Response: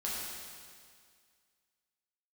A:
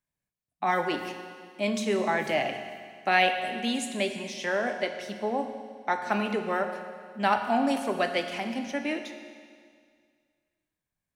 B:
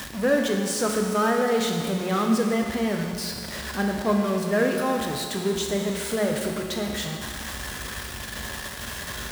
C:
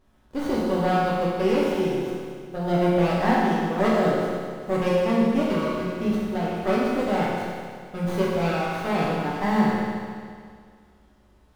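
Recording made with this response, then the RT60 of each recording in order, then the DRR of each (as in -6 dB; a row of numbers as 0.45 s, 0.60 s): C; 2.0 s, 2.0 s, 2.0 s; 5.5 dB, 1.0 dB, -7.0 dB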